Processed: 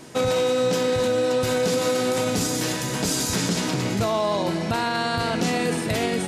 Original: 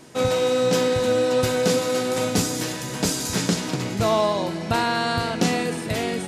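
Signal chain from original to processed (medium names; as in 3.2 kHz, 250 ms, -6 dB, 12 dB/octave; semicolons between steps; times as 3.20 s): peak limiter -17.5 dBFS, peak gain reduction 8.5 dB; trim +3.5 dB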